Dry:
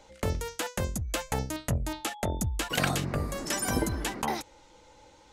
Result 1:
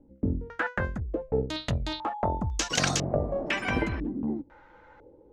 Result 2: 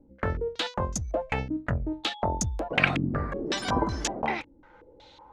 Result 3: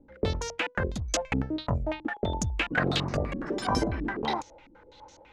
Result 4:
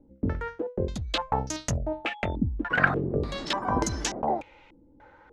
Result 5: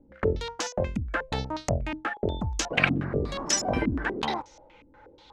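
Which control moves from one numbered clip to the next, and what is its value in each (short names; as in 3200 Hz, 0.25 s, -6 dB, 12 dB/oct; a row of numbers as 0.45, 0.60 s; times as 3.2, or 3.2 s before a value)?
stepped low-pass, rate: 2, 5.4, 12, 3.4, 8.3 Hz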